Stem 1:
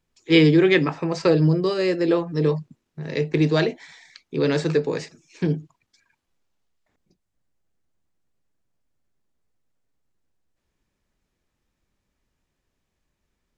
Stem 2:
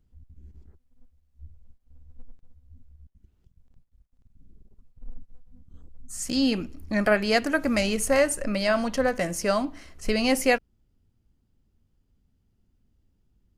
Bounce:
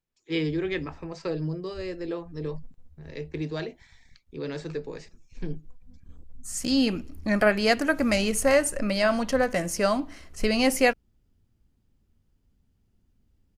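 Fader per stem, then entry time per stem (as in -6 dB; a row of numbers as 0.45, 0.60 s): -12.5, +0.5 dB; 0.00, 0.35 s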